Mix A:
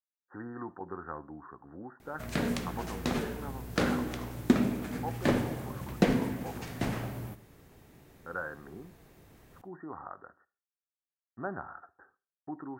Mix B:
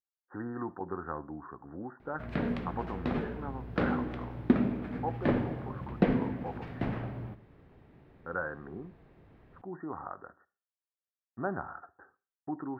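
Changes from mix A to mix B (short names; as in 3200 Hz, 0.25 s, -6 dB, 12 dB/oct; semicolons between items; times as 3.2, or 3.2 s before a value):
speech +4.5 dB; master: add air absorption 420 m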